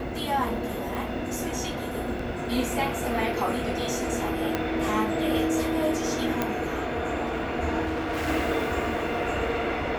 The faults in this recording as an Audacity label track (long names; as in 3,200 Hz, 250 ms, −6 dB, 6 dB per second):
0.950000	0.950000	click
2.190000	2.190000	drop-out 4 ms
4.550000	4.550000	click −11 dBFS
6.420000	6.420000	click −11 dBFS
7.850000	8.290000	clipping −25.5 dBFS